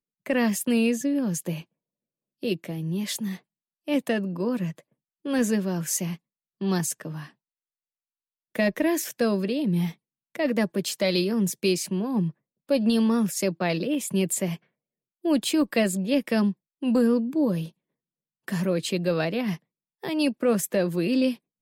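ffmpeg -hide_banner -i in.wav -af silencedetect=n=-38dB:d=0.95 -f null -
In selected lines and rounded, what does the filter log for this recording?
silence_start: 7.26
silence_end: 8.55 | silence_duration: 1.29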